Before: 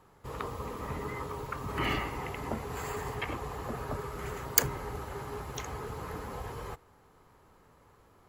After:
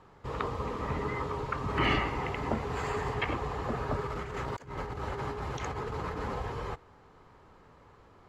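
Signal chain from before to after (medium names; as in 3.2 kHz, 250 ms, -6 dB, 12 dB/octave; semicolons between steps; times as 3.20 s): low-pass 4.9 kHz 12 dB/octave; 4.06–6.38 s: compressor with a negative ratio -40 dBFS, ratio -0.5; trim +4 dB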